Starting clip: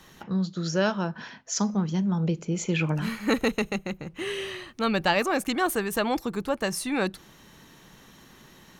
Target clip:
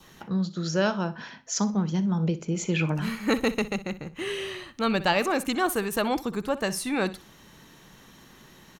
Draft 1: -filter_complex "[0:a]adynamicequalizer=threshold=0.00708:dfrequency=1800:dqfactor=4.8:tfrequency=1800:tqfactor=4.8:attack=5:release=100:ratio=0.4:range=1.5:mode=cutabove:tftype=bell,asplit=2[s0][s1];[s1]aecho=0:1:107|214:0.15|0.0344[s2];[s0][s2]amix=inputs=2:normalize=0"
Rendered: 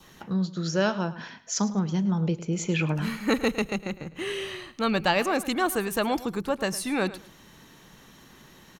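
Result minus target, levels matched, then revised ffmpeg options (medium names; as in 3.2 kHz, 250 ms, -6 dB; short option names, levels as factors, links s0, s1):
echo 45 ms late
-filter_complex "[0:a]adynamicequalizer=threshold=0.00708:dfrequency=1800:dqfactor=4.8:tfrequency=1800:tqfactor=4.8:attack=5:release=100:ratio=0.4:range=1.5:mode=cutabove:tftype=bell,asplit=2[s0][s1];[s1]aecho=0:1:62|124:0.15|0.0344[s2];[s0][s2]amix=inputs=2:normalize=0"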